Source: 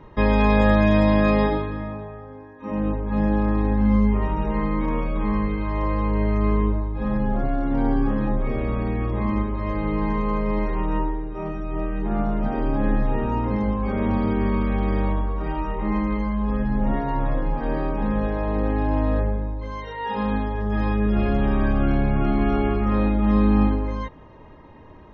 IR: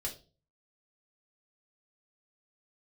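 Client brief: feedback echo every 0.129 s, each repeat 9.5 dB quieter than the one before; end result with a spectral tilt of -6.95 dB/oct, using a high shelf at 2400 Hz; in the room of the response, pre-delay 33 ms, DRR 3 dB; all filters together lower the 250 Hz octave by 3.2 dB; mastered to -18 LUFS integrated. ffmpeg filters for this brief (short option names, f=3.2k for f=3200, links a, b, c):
-filter_complex "[0:a]equalizer=f=250:t=o:g=-4,highshelf=f=2.4k:g=-8,aecho=1:1:129|258|387|516:0.335|0.111|0.0365|0.012,asplit=2[a][b];[1:a]atrim=start_sample=2205,adelay=33[c];[b][c]afir=irnorm=-1:irlink=0,volume=-3.5dB[d];[a][d]amix=inputs=2:normalize=0,volume=3dB"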